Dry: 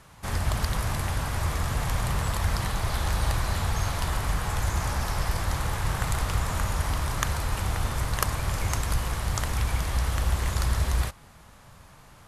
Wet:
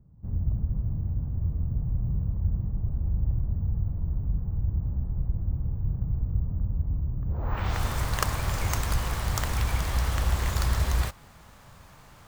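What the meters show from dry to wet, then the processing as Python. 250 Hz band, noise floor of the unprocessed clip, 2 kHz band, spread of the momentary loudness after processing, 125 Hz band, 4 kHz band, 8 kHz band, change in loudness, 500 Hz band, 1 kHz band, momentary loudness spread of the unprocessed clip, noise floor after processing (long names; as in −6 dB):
−1.0 dB, −52 dBFS, −5.5 dB, 4 LU, +0.5 dB, −5.0 dB, −6.0 dB, −1.0 dB, −5.0 dB, −6.0 dB, 2 LU, −52 dBFS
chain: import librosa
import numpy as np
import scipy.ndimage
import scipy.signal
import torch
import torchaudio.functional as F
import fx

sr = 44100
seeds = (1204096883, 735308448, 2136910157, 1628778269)

y = fx.filter_sweep_lowpass(x, sr, from_hz=190.0, to_hz=11000.0, start_s=7.25, end_s=7.82, q=0.88)
y = np.repeat(scipy.signal.resample_poly(y, 1, 2), 2)[:len(y)]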